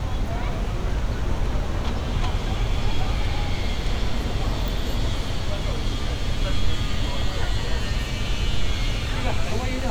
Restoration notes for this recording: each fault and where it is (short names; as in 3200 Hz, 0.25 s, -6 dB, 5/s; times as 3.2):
4.68 pop